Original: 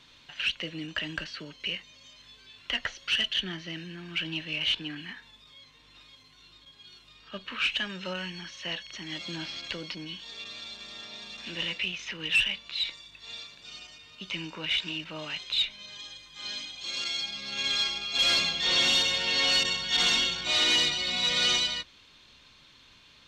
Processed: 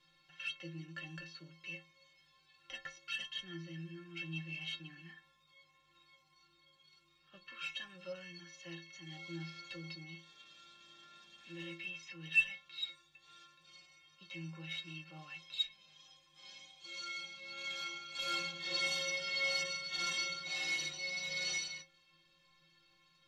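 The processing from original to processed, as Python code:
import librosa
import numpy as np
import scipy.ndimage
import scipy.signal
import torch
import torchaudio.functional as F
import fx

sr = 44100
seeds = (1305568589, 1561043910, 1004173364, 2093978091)

y = fx.stiff_resonator(x, sr, f0_hz=160.0, decay_s=0.44, stiffness=0.03)
y = y * 10.0 ** (1.0 / 20.0)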